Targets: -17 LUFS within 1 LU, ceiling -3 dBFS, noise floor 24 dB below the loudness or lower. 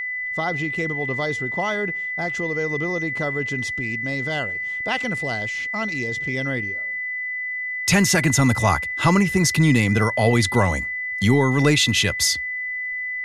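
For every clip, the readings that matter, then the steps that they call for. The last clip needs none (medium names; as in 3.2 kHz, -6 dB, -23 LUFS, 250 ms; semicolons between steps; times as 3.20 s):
tick rate 20 per s; steady tone 2 kHz; tone level -25 dBFS; loudness -21.0 LUFS; peak level -5.0 dBFS; loudness target -17.0 LUFS
-> de-click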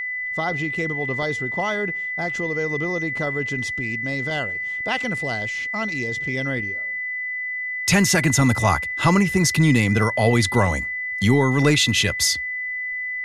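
tick rate 0 per s; steady tone 2 kHz; tone level -25 dBFS
-> band-stop 2 kHz, Q 30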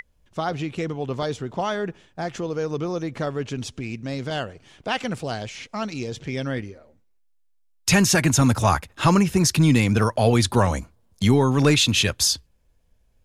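steady tone not found; loudness -22.5 LUFS; peak level -5.5 dBFS; loudness target -17.0 LUFS
-> trim +5.5 dB; peak limiter -3 dBFS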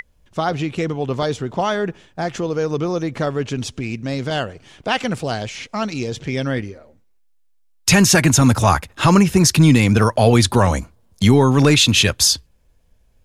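loudness -17.5 LUFS; peak level -3.0 dBFS; noise floor -56 dBFS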